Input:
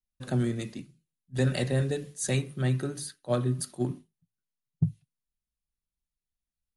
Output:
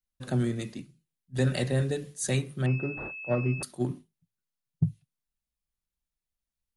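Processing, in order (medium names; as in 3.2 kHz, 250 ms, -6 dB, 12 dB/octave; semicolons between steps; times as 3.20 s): 2.66–3.63 s: class-D stage that switches slowly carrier 2.6 kHz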